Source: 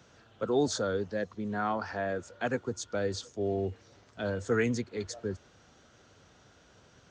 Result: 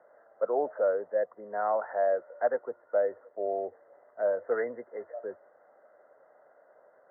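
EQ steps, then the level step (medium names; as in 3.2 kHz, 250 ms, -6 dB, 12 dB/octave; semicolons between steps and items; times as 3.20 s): resonant high-pass 590 Hz, resonance Q 4.9; brick-wall FIR low-pass 2.1 kHz; distance through air 430 m; -2.0 dB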